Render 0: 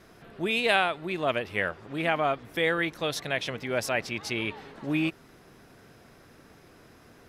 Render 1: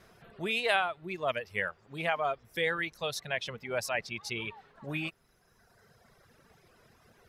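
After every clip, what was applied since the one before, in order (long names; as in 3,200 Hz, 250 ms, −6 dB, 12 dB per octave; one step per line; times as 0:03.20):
reverb reduction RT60 1.8 s
parametric band 290 Hz −10.5 dB 0.43 octaves
level −3 dB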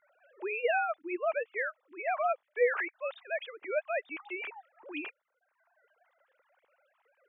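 three sine waves on the formant tracks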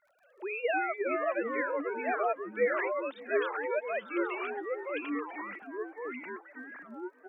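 delay with pitch and tempo change per echo 234 ms, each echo −3 semitones, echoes 3
repeating echo 576 ms, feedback 41%, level −22 dB
surface crackle 33 per second −59 dBFS
level −1.5 dB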